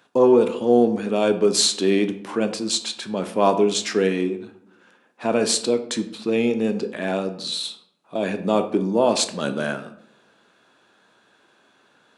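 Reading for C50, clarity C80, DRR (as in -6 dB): 12.0 dB, 15.0 dB, 8.0 dB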